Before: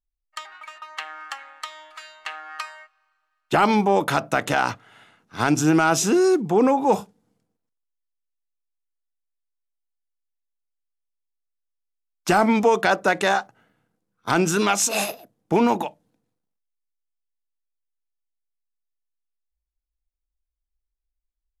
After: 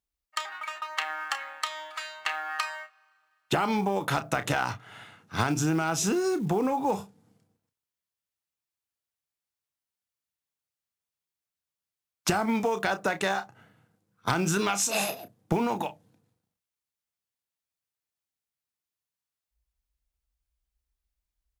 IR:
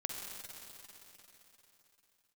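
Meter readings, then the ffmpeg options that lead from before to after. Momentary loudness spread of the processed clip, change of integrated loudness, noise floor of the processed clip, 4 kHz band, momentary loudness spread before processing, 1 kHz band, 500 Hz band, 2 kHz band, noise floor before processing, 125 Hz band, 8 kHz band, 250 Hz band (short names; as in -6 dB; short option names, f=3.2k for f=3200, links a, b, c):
11 LU, -8.5 dB, under -85 dBFS, -3.5 dB, 19 LU, -7.0 dB, -8.5 dB, -5.5 dB, -83 dBFS, -3.0 dB, -5.0 dB, -7.5 dB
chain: -filter_complex "[0:a]highpass=71,asplit=2[a][b];[b]adelay=31,volume=-11dB[c];[a][c]amix=inputs=2:normalize=0,acompressor=threshold=-28dB:ratio=5,acrusher=bits=8:mode=log:mix=0:aa=0.000001,asubboost=boost=2.5:cutoff=150,volume=4dB"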